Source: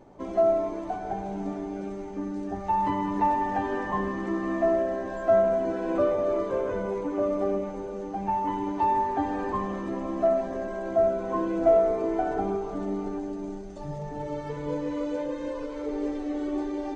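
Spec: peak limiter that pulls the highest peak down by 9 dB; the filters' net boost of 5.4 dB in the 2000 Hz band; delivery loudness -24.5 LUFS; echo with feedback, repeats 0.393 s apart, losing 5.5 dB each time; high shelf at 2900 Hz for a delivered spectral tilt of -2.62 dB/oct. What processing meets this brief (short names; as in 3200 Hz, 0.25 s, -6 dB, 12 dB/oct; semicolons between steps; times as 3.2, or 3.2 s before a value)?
bell 2000 Hz +4 dB; high shelf 2900 Hz +8 dB; limiter -18.5 dBFS; feedback echo 0.393 s, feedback 53%, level -5.5 dB; gain +3 dB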